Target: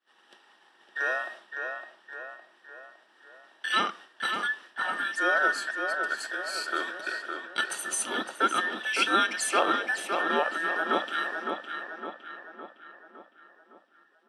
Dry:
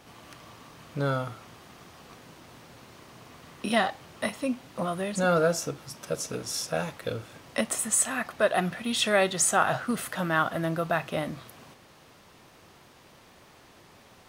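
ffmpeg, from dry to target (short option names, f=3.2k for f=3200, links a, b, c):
-filter_complex "[0:a]afftfilt=real='real(if(between(b,1,1012),(2*floor((b-1)/92)+1)*92-b,b),0)':imag='imag(if(between(b,1,1012),(2*floor((b-1)/92)+1)*92-b,b),0)*if(between(b,1,1012),-1,1)':win_size=2048:overlap=0.75,highpass=f=230:w=0.5412,highpass=f=230:w=1.3066,equalizer=f=350:t=q:w=4:g=7,equalizer=f=3k:t=q:w=4:g=6,equalizer=f=7k:t=q:w=4:g=-10,lowpass=f=9.3k:w=0.5412,lowpass=f=9.3k:w=1.3066,agate=range=-33dB:threshold=-40dB:ratio=3:detection=peak,asplit=2[a][b];[b]adelay=560,lowpass=f=3.1k:p=1,volume=-5dB,asplit=2[c][d];[d]adelay=560,lowpass=f=3.1k:p=1,volume=0.54,asplit=2[e][f];[f]adelay=560,lowpass=f=3.1k:p=1,volume=0.54,asplit=2[g][h];[h]adelay=560,lowpass=f=3.1k:p=1,volume=0.54,asplit=2[i][j];[j]adelay=560,lowpass=f=3.1k:p=1,volume=0.54,asplit=2[k][l];[l]adelay=560,lowpass=f=3.1k:p=1,volume=0.54,asplit=2[m][n];[n]adelay=560,lowpass=f=3.1k:p=1,volume=0.54[o];[c][e][g][i][k][m][o]amix=inputs=7:normalize=0[p];[a][p]amix=inputs=2:normalize=0,volume=-2dB"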